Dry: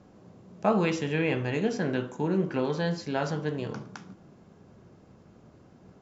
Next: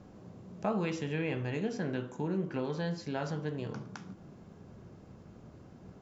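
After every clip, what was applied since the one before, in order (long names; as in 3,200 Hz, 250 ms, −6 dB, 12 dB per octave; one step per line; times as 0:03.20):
low-shelf EQ 150 Hz +5.5 dB
downward compressor 1.5 to 1, threshold −44 dBFS, peak gain reduction 9 dB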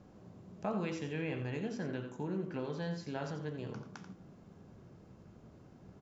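single-tap delay 87 ms −9.5 dB
level −4.5 dB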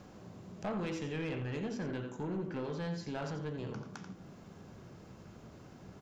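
soft clipping −34.5 dBFS, distortion −13 dB
one half of a high-frequency compander encoder only
level +3 dB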